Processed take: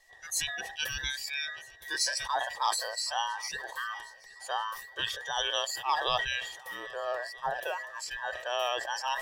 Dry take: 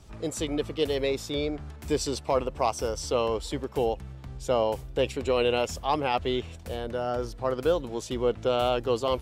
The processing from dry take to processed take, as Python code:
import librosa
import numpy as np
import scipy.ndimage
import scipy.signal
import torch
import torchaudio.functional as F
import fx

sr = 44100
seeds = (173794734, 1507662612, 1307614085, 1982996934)

p1 = fx.band_invert(x, sr, width_hz=2000)
p2 = fx.rider(p1, sr, range_db=4, speed_s=0.5)
p3 = p1 + (p2 * 10.0 ** (-1.5 / 20.0))
p4 = fx.noise_reduce_blind(p3, sr, reduce_db=12)
p5 = fx.fixed_phaser(p4, sr, hz=590.0, stages=4)
p6 = p5 + fx.echo_swing(p5, sr, ms=1292, ratio=1.5, feedback_pct=37, wet_db=-23, dry=0)
y = fx.sustainer(p6, sr, db_per_s=71.0)